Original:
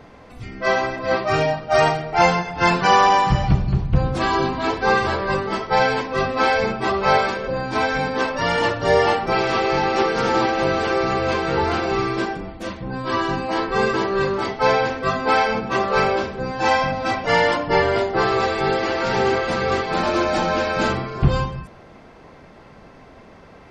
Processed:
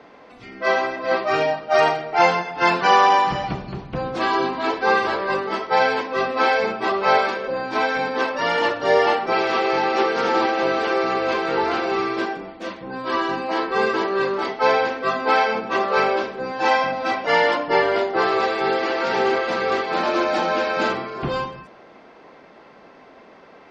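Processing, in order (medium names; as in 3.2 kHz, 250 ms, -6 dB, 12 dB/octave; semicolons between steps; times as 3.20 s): three-band isolator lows -20 dB, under 220 Hz, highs -19 dB, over 6.1 kHz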